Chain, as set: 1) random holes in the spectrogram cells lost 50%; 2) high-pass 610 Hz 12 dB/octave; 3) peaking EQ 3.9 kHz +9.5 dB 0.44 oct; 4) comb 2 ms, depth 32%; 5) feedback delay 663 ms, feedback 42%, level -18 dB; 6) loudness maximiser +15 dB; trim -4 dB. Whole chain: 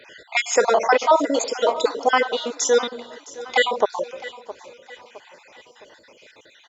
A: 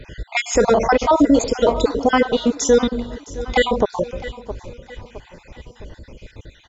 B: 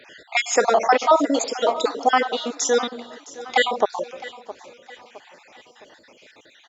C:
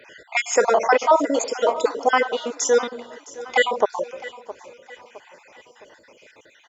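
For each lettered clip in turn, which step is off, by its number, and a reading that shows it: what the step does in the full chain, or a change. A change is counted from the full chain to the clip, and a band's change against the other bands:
2, 250 Hz band +13.0 dB; 4, 250 Hz band +3.5 dB; 3, 4 kHz band -4.0 dB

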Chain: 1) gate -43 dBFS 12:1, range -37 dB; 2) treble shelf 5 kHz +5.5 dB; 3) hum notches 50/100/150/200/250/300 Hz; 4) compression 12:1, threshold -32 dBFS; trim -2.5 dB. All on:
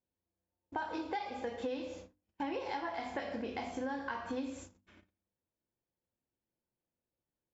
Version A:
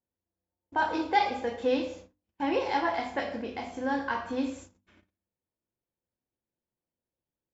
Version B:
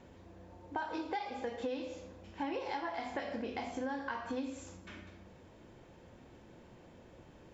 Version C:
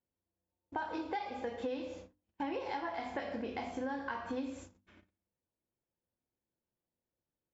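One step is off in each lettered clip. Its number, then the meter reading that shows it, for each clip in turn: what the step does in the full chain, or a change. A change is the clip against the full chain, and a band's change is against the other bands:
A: 4, mean gain reduction 7.0 dB; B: 1, momentary loudness spread change +13 LU; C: 2, 4 kHz band -1.5 dB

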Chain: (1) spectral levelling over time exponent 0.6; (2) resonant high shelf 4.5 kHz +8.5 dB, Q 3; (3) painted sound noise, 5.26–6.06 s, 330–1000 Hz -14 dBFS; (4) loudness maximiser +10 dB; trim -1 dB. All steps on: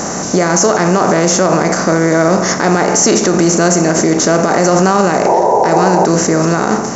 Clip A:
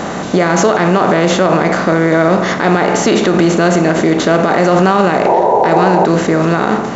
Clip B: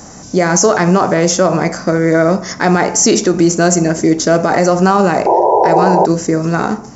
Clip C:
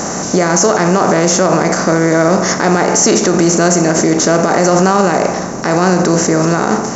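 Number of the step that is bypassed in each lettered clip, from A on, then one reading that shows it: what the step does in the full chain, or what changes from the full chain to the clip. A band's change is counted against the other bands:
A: 2, 4 kHz band -2.0 dB; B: 1, 4 kHz band -1.5 dB; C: 3, 1 kHz band -1.5 dB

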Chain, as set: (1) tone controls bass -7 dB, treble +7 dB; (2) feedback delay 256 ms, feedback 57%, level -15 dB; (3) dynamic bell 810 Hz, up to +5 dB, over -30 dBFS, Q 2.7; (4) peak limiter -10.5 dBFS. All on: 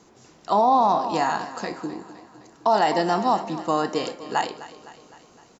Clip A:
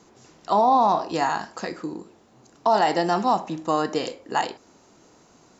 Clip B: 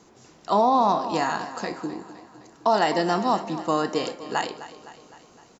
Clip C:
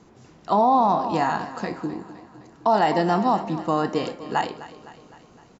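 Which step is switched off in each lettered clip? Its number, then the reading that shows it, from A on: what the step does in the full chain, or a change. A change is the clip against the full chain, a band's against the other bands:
2, momentary loudness spread change -1 LU; 3, loudness change -1.5 LU; 1, 125 Hz band +5.5 dB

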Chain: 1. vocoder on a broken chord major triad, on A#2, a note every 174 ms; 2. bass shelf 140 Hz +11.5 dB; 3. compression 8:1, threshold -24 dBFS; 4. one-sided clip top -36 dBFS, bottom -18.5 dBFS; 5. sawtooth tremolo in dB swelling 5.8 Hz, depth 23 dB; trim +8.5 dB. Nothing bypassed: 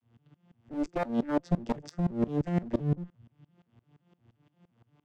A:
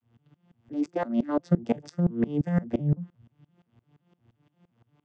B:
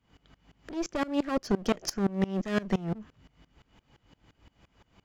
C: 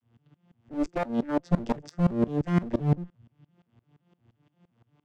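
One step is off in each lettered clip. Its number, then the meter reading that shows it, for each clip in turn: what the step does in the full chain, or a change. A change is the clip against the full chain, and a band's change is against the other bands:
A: 4, distortion -8 dB; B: 1, 4 kHz band +11.0 dB; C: 3, mean gain reduction 3.5 dB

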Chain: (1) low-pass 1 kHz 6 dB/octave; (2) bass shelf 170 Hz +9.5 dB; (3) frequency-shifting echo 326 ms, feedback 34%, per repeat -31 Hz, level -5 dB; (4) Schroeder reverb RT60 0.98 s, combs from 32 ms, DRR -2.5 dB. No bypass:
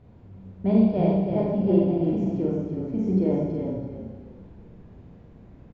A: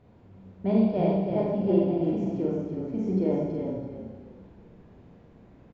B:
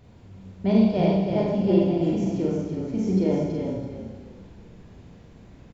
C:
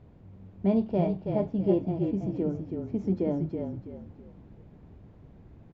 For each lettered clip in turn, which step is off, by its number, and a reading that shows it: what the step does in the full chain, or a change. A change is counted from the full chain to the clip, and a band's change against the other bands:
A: 2, 125 Hz band -3.0 dB; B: 1, 1 kHz band +2.0 dB; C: 4, echo-to-direct 4.5 dB to -4.5 dB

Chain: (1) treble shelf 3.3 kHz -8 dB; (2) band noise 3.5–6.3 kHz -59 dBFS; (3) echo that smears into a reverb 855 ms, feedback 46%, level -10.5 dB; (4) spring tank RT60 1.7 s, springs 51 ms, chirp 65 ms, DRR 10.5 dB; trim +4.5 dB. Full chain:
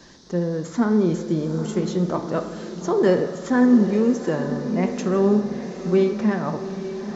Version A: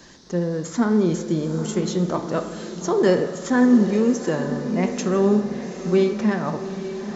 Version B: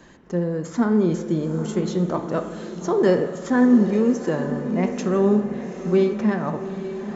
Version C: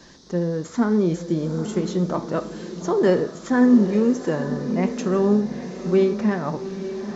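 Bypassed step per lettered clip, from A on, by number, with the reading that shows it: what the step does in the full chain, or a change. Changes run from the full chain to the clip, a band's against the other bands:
1, 4 kHz band +3.5 dB; 2, 4 kHz band -1.5 dB; 4, echo-to-direct -6.5 dB to -9.5 dB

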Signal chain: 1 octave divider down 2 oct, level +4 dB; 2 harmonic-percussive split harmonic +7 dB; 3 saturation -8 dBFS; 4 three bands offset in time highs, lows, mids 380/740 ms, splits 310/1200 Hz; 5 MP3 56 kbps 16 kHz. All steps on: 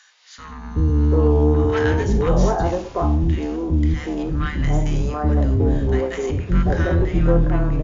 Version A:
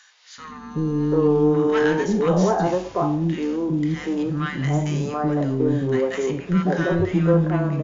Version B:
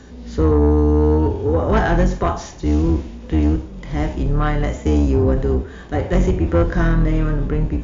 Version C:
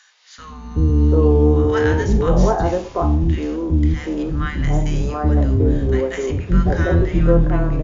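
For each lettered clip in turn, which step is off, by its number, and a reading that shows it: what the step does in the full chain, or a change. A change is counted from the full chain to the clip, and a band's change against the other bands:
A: 1, 125 Hz band -5.0 dB; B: 4, momentary loudness spread change +2 LU; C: 3, distortion -17 dB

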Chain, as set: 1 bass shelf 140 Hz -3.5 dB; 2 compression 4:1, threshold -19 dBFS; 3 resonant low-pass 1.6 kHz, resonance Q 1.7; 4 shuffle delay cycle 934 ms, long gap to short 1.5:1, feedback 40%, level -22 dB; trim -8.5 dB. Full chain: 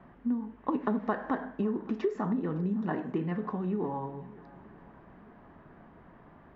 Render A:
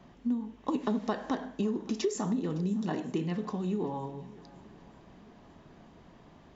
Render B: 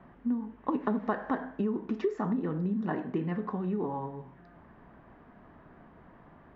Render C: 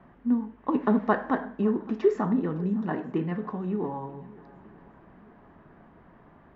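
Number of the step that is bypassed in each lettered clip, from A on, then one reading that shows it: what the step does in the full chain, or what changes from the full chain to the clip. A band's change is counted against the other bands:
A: 3, 2 kHz band -3.0 dB; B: 4, echo-to-direct -20.0 dB to none; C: 2, mean gain reduction 2.5 dB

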